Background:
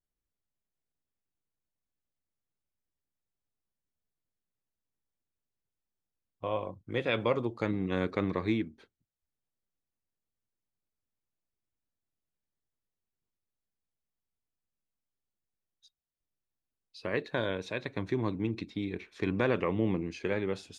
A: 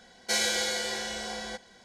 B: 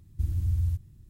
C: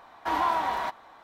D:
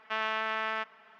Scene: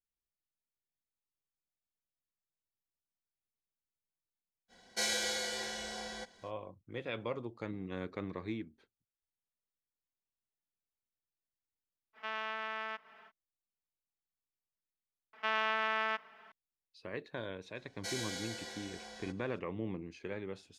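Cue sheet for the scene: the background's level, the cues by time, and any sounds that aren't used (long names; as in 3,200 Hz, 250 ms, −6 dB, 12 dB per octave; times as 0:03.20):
background −10 dB
0:04.68: mix in A −6.5 dB, fades 0.05 s
0:12.13: mix in D −7.5 dB, fades 0.05 s + upward compression 4 to 1, threshold −44 dBFS
0:15.33: mix in D −1 dB
0:17.75: mix in A −13.5 dB
not used: B, C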